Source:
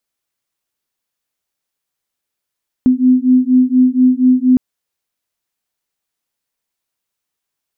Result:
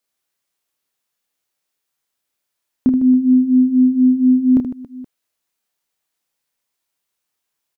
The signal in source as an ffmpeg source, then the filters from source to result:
-f lavfi -i "aevalsrc='0.282*(sin(2*PI*252*t)+sin(2*PI*256.2*t))':duration=1.71:sample_rate=44100"
-filter_complex "[0:a]lowshelf=frequency=190:gain=-5.5,asplit=2[link_01][link_02];[link_02]aecho=0:1:30|78|154.8|277.7|474.3:0.631|0.398|0.251|0.158|0.1[link_03];[link_01][link_03]amix=inputs=2:normalize=0"

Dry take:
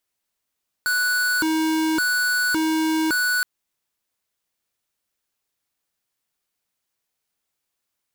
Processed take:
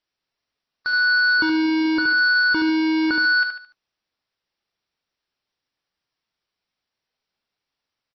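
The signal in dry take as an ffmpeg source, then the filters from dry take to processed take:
-f lavfi -i "aevalsrc='0.0891*(2*lt(mod((898.5*t+581.5/0.89*(0.5-abs(mod(0.89*t,1)-0.5))),1),0.5)-1)':duration=2.57:sample_rate=44100"
-af "aecho=1:1:73|146|219|292:0.501|0.18|0.065|0.0234" -ar 22050 -c:a libmp3lame -b:a 24k

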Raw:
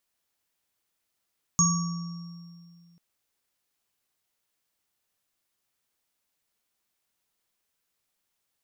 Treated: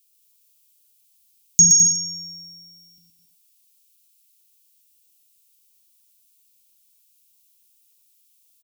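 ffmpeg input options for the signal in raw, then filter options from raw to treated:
-f lavfi -i "aevalsrc='0.0841*pow(10,-3*t/2.4)*sin(2*PI*171*t)+0.0473*pow(10,-3*t/1.25)*sin(2*PI*1140*t)+0.02*pow(10,-3*t/2.23)*sin(2*PI*5550*t)+0.141*pow(10,-3*t/0.66)*sin(2*PI*6590*t)':duration=1.39:sample_rate=44100"
-filter_complex "[0:a]crystalizer=i=4:c=0,asuperstop=centerf=1000:order=12:qfactor=0.53,asplit=2[link_01][link_02];[link_02]aecho=0:1:120|210|277.5|328.1|366.1:0.631|0.398|0.251|0.158|0.1[link_03];[link_01][link_03]amix=inputs=2:normalize=0"

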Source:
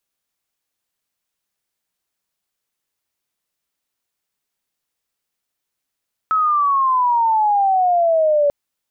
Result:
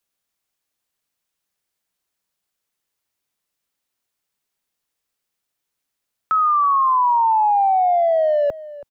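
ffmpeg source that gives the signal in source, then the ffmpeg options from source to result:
-f lavfi -i "aevalsrc='pow(10,(-13.5+1.5*t/2.19)/20)*sin(2*PI*1300*2.19/log(570/1300)*(exp(log(570/1300)*t/2.19)-1))':duration=2.19:sample_rate=44100"
-filter_complex "[0:a]acrossover=split=110|510[link_01][link_02][link_03];[link_02]asoftclip=type=tanh:threshold=-31.5dB[link_04];[link_01][link_04][link_03]amix=inputs=3:normalize=0,asplit=2[link_05][link_06];[link_06]adelay=326.5,volume=-17dB,highshelf=frequency=4000:gain=-7.35[link_07];[link_05][link_07]amix=inputs=2:normalize=0"

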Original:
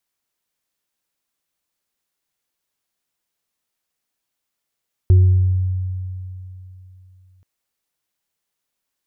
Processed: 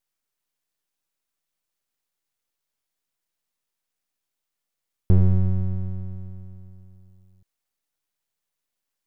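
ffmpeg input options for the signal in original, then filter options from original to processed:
-f lavfi -i "aevalsrc='0.473*pow(10,-3*t/3.14)*sin(2*PI*92.6*t)+0.0596*pow(10,-3*t/0.89)*sin(2*PI*362*t)':duration=2.33:sample_rate=44100"
-af "aeval=exprs='max(val(0),0)':channel_layout=same"

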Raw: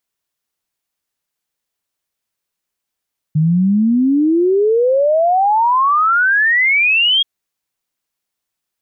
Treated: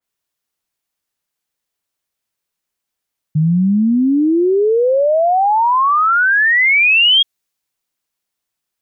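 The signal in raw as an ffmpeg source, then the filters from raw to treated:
-f lavfi -i "aevalsrc='0.316*clip(min(t,3.88-t)/0.01,0,1)*sin(2*PI*150*3.88/log(3300/150)*(exp(log(3300/150)*t/3.88)-1))':duration=3.88:sample_rate=44100"
-af "adynamicequalizer=threshold=0.0398:dfrequency=2600:dqfactor=0.7:tfrequency=2600:tqfactor=0.7:attack=5:release=100:ratio=0.375:range=2:mode=boostabove:tftype=highshelf"

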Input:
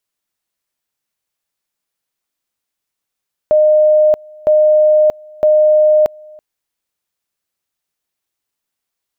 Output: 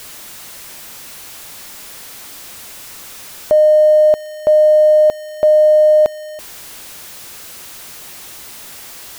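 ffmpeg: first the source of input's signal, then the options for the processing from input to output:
-f lavfi -i "aevalsrc='pow(10,(-6.5-27.5*gte(mod(t,0.96),0.63))/20)*sin(2*PI*612*t)':duration=2.88:sample_rate=44100"
-af "aeval=exprs='val(0)+0.5*0.0398*sgn(val(0))':channel_layout=same"

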